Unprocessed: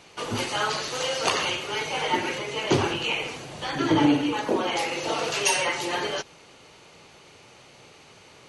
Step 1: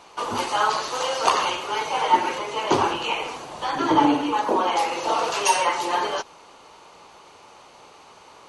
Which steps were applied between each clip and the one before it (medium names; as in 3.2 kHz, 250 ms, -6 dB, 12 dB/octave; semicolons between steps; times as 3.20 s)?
ten-band graphic EQ 125 Hz -9 dB, 1 kHz +11 dB, 2 kHz -4 dB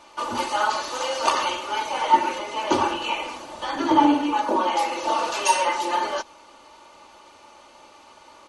comb 3.4 ms, depth 60%; trim -2.5 dB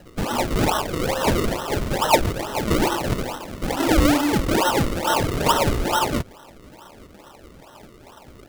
in parallel at -5 dB: wavefolder -20 dBFS; on the sum: decimation with a swept rate 37×, swing 100% 2.3 Hz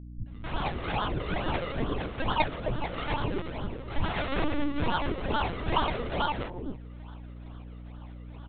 three bands offset in time lows, highs, mids 270/530 ms, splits 150/520 Hz; LPC vocoder at 8 kHz pitch kept; hum 60 Hz, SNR 12 dB; trim -7 dB